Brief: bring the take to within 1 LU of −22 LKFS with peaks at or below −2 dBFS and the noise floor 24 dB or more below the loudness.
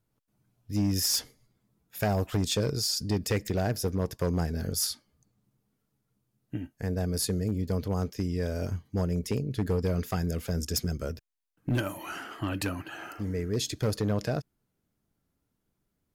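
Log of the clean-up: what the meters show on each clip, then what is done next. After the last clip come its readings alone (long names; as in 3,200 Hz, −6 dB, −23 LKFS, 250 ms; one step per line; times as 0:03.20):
share of clipped samples 0.7%; peaks flattened at −21.0 dBFS; integrated loudness −30.5 LKFS; sample peak −21.0 dBFS; target loudness −22.0 LKFS
→ clipped peaks rebuilt −21 dBFS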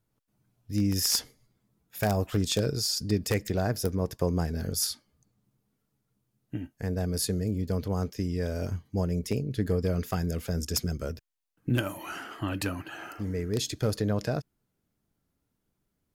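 share of clipped samples 0.0%; integrated loudness −30.0 LKFS; sample peak −12.0 dBFS; target loudness −22.0 LKFS
→ level +8 dB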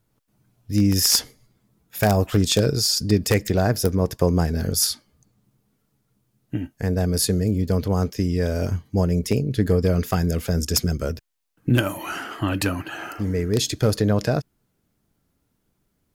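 integrated loudness −22.0 LKFS; sample peak −4.0 dBFS; background noise floor −72 dBFS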